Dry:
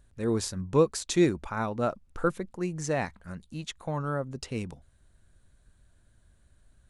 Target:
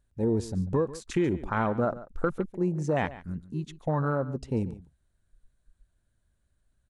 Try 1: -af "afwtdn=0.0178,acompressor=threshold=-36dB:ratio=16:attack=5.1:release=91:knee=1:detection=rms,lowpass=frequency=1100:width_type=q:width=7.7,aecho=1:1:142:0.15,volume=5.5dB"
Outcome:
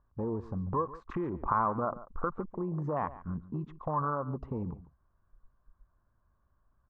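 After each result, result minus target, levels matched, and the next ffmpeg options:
downward compressor: peak gain reduction +9.5 dB; 1,000 Hz band +6.5 dB
-af "afwtdn=0.0178,acompressor=threshold=-26dB:ratio=16:attack=5.1:release=91:knee=1:detection=rms,lowpass=frequency=1100:width_type=q:width=7.7,aecho=1:1:142:0.15,volume=5.5dB"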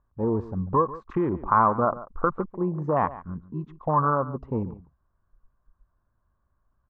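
1,000 Hz band +7.0 dB
-af "afwtdn=0.0178,acompressor=threshold=-26dB:ratio=16:attack=5.1:release=91:knee=1:detection=rms,aecho=1:1:142:0.15,volume=5.5dB"

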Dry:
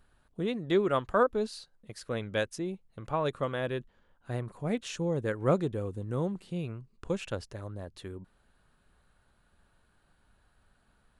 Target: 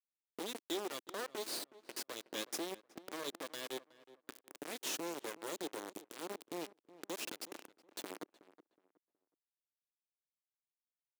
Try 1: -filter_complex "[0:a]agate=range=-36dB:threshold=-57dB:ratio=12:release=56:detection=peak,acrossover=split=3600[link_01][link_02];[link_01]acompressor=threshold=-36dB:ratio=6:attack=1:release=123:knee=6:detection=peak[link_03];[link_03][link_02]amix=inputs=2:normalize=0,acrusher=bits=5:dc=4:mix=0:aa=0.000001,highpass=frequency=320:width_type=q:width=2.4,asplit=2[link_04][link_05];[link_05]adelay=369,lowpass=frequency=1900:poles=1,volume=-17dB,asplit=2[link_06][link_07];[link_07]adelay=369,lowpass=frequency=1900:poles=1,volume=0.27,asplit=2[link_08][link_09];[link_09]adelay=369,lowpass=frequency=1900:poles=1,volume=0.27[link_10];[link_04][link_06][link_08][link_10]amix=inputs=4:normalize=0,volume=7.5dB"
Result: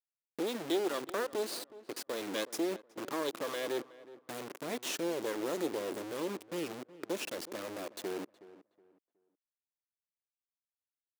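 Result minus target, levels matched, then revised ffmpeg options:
downward compressor: peak gain reduction −10 dB
-filter_complex "[0:a]agate=range=-36dB:threshold=-57dB:ratio=12:release=56:detection=peak,acrossover=split=3600[link_01][link_02];[link_01]acompressor=threshold=-48dB:ratio=6:attack=1:release=123:knee=6:detection=peak[link_03];[link_03][link_02]amix=inputs=2:normalize=0,acrusher=bits=5:dc=4:mix=0:aa=0.000001,highpass=frequency=320:width_type=q:width=2.4,asplit=2[link_04][link_05];[link_05]adelay=369,lowpass=frequency=1900:poles=1,volume=-17dB,asplit=2[link_06][link_07];[link_07]adelay=369,lowpass=frequency=1900:poles=1,volume=0.27,asplit=2[link_08][link_09];[link_09]adelay=369,lowpass=frequency=1900:poles=1,volume=0.27[link_10];[link_04][link_06][link_08][link_10]amix=inputs=4:normalize=0,volume=7.5dB"

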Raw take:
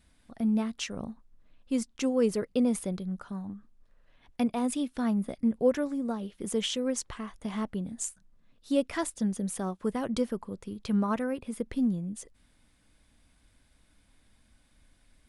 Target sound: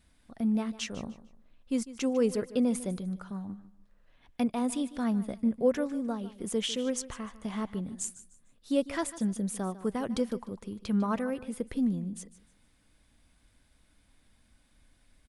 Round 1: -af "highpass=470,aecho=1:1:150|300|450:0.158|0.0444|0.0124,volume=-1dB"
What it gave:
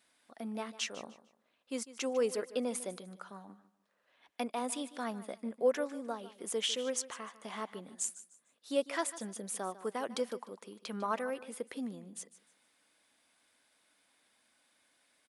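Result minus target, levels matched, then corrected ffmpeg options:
500 Hz band +3.0 dB
-af "aecho=1:1:150|300|450:0.158|0.0444|0.0124,volume=-1dB"

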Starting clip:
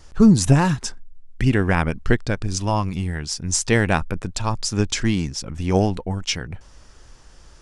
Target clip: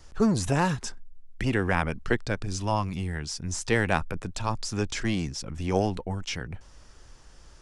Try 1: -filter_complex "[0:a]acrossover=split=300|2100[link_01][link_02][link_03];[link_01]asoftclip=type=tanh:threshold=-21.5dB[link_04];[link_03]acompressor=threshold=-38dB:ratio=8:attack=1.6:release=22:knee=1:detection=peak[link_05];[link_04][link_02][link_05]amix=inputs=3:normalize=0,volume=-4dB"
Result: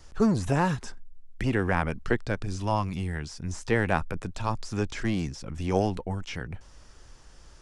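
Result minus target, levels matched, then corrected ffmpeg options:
downward compressor: peak gain reduction +9.5 dB
-filter_complex "[0:a]acrossover=split=300|2100[link_01][link_02][link_03];[link_01]asoftclip=type=tanh:threshold=-21.5dB[link_04];[link_03]acompressor=threshold=-27dB:ratio=8:attack=1.6:release=22:knee=1:detection=peak[link_05];[link_04][link_02][link_05]amix=inputs=3:normalize=0,volume=-4dB"

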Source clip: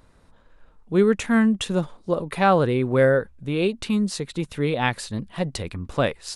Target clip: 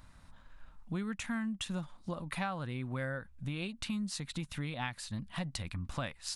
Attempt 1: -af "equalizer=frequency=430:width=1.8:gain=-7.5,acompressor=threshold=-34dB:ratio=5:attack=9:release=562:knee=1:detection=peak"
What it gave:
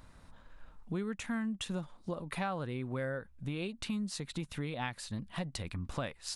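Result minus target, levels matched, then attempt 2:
500 Hz band +4.0 dB
-af "equalizer=frequency=430:width=1.8:gain=-17.5,acompressor=threshold=-34dB:ratio=5:attack=9:release=562:knee=1:detection=peak"

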